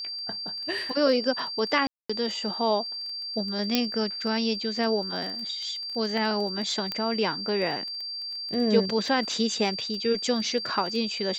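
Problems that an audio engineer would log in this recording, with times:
crackle 15/s -33 dBFS
tone 4700 Hz -32 dBFS
1.87–2.1 gap 0.225 s
3.75 pop -7 dBFS
6.92 pop -15 dBFS

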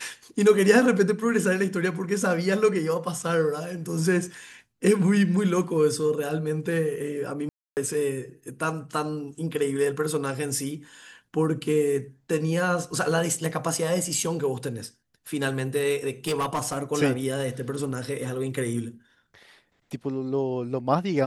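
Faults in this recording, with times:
7.49–7.77 gap 0.279 s
16.27–16.79 clipped -21.5 dBFS

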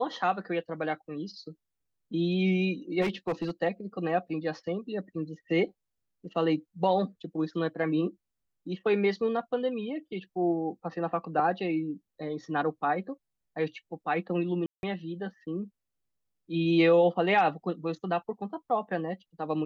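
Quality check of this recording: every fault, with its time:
3.01–3.51 clipped -25 dBFS
14.66–14.83 gap 0.171 s

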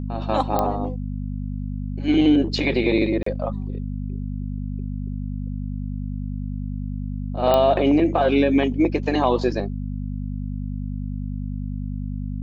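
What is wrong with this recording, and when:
hum 50 Hz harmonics 5 -28 dBFS
0.59 pop -8 dBFS
3.23–3.26 gap 34 ms
7.54 pop -7 dBFS

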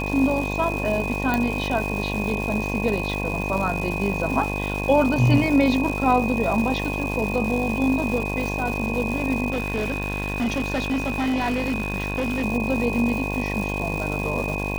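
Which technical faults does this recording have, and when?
buzz 50 Hz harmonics 22 -28 dBFS
crackle 450/s -28 dBFS
tone 2500 Hz -29 dBFS
1.34 pop
9.5–12.45 clipped -20 dBFS

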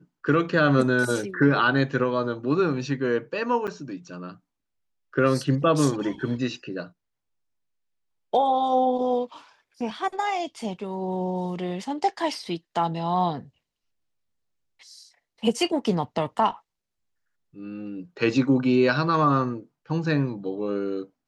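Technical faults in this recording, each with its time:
3.67–3.68 gap 7.7 ms

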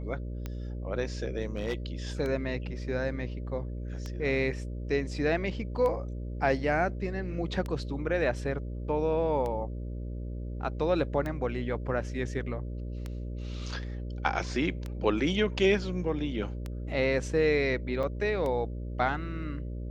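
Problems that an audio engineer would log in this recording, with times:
buzz 60 Hz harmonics 10 -36 dBFS
tick 33 1/3 rpm -22 dBFS
1.56–1.74 clipped -25.5 dBFS
18.03 gap 4.1 ms

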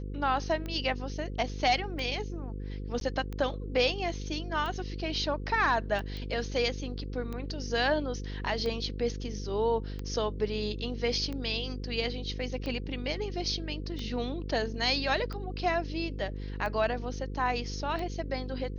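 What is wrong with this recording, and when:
buzz 50 Hz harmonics 10 -37 dBFS
tick 45 rpm -24 dBFS
3–3.01 gap 12 ms
6.17 pop -28 dBFS

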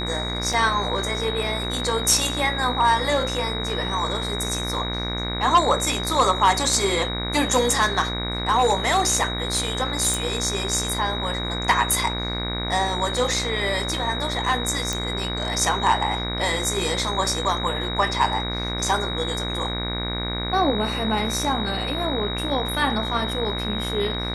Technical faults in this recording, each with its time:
buzz 60 Hz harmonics 39 -29 dBFS
tone 3800 Hz -29 dBFS
0.53 gap 3.6 ms
10.14 pop
14.93 pop

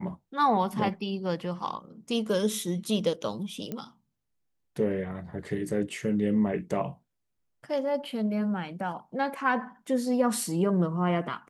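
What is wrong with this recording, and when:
3.72 pop -21 dBFS

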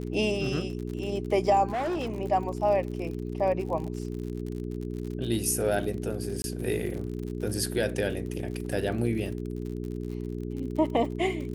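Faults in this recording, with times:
crackle 53/s -35 dBFS
hum 60 Hz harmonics 7 -34 dBFS
1.7–2.2 clipped -26.5 dBFS
6.42–6.44 gap 21 ms
8.29–8.3 gap 5.1 ms

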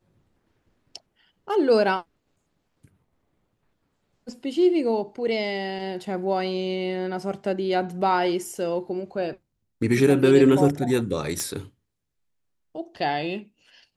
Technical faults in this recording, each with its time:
11.4 pop -12 dBFS

